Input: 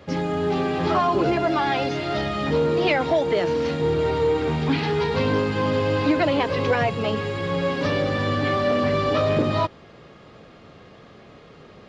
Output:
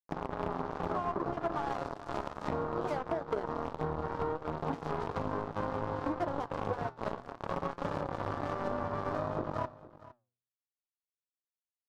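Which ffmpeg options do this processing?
ffmpeg -i in.wav -af "lowpass=4900,acrusher=bits=2:mix=0:aa=0.5,highshelf=frequency=1600:width_type=q:width=1.5:gain=-13,alimiter=limit=-12.5dB:level=0:latency=1:release=372,acompressor=threshold=-31dB:ratio=20,flanger=delay=5.7:depth=6.9:regen=83:speed=0.64:shape=sinusoidal,bandreject=frequency=121.8:width_type=h:width=4,bandreject=frequency=243.6:width_type=h:width=4,bandreject=frequency=365.4:width_type=h:width=4,asoftclip=type=hard:threshold=-29dB,aecho=1:1:460:0.126,volume=7dB" out.wav

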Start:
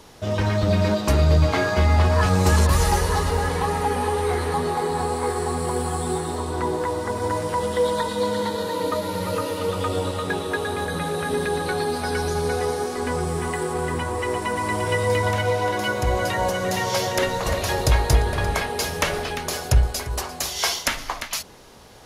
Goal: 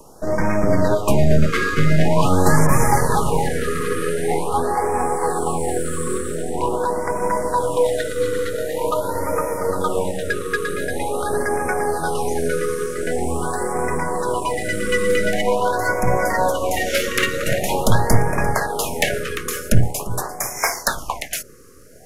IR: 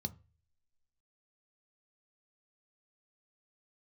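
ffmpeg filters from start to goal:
-filter_complex "[0:a]asettb=1/sr,asplit=3[link_01][link_02][link_03];[link_01]atrim=end=16.864[link_04];[link_02]atrim=start=16.86:end=17.58,asetpts=PTS-STARTPTS,afade=type=in:duration=0.004:curve=qsin,afade=type=out:start_time=0.716:duration=0.004:curve=qsin,equalizer=frequency=2500:width_type=o:width=0.67:gain=5.5[link_05];[link_03]atrim=start=17.576[link_06];[link_04][link_05]acrossfade=duration=0.004:curve1=hsin:curve2=qsin[link_07];[link_07][link_06]acrossfade=duration=0.004:curve1=qsin:curve2=hsin,acrossover=split=340|600|5800[link_08][link_09][link_10][link_11];[link_08]aeval=exprs='abs(val(0))':channel_layout=same[link_12];[link_10]adynamicsmooth=sensitivity=3:basefreq=1200[link_13];[link_12][link_09][link_13][link_11]amix=inputs=4:normalize=0,afftfilt=real='re*(1-between(b*sr/1024,750*pow(3600/750,0.5+0.5*sin(2*PI*0.45*pts/sr))/1.41,750*pow(3600/750,0.5+0.5*sin(2*PI*0.45*pts/sr))*1.41))':imag='im*(1-between(b*sr/1024,750*pow(3600/750,0.5+0.5*sin(2*PI*0.45*pts/sr))/1.41,750*pow(3600/750,0.5+0.5*sin(2*PI*0.45*pts/sr))*1.41))':win_size=1024:overlap=0.75,volume=5.5dB"

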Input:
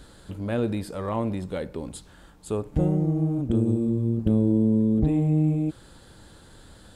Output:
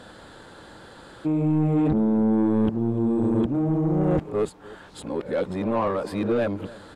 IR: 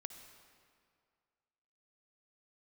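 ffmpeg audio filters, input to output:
-filter_complex "[0:a]areverse,asplit=2[link_01][link_02];[link_02]highpass=frequency=720:poles=1,volume=22dB,asoftclip=type=tanh:threshold=-9.5dB[link_03];[link_01][link_03]amix=inputs=2:normalize=0,lowpass=frequency=1200:poles=1,volume=-6dB,asplit=2[link_04][link_05];[link_05]adelay=297.4,volume=-20dB,highshelf=frequency=4000:gain=-6.69[link_06];[link_04][link_06]amix=inputs=2:normalize=0,volume=-2.5dB"

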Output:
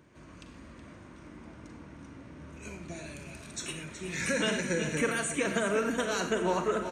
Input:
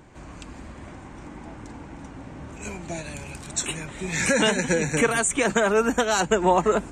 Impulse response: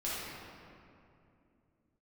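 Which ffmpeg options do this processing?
-filter_complex "[0:a]highpass=71,equalizer=frequency=800:width_type=o:width=0.28:gain=-12,bandreject=frequency=7500:width=5.4,aecho=1:1:371|742|1113|1484|1855|2226:0.299|0.167|0.0936|0.0524|0.0294|0.0164,asplit=2[link_01][link_02];[1:a]atrim=start_sample=2205,atrim=end_sample=3969,adelay=40[link_03];[link_02][link_03]afir=irnorm=-1:irlink=0,volume=-8dB[link_04];[link_01][link_04]amix=inputs=2:normalize=0,volume=-8.5dB"

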